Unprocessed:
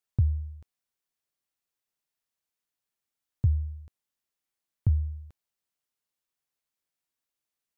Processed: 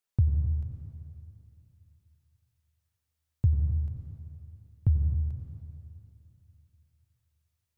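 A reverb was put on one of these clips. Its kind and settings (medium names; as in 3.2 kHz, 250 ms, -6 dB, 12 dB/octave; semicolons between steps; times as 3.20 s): plate-style reverb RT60 2.8 s, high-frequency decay 1×, pre-delay 80 ms, DRR 3 dB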